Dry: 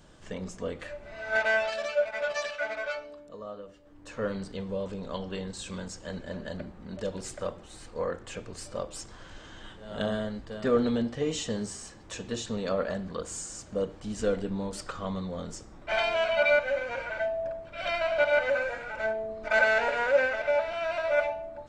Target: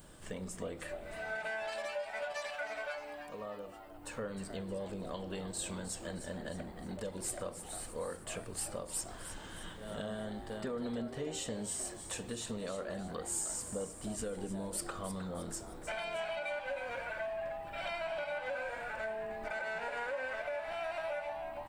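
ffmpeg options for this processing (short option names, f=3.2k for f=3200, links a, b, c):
-filter_complex "[0:a]alimiter=limit=-21.5dB:level=0:latency=1:release=136,acompressor=threshold=-39dB:ratio=2.5,aexciter=amount=8.5:drive=4.7:freq=8.8k,asplit=2[a][b];[b]asplit=5[c][d][e][f][g];[c]adelay=310,afreqshift=150,volume=-10.5dB[h];[d]adelay=620,afreqshift=300,volume=-17.2dB[i];[e]adelay=930,afreqshift=450,volume=-24dB[j];[f]adelay=1240,afreqshift=600,volume=-30.7dB[k];[g]adelay=1550,afreqshift=750,volume=-37.5dB[l];[h][i][j][k][l]amix=inputs=5:normalize=0[m];[a][m]amix=inputs=2:normalize=0,volume=-1dB"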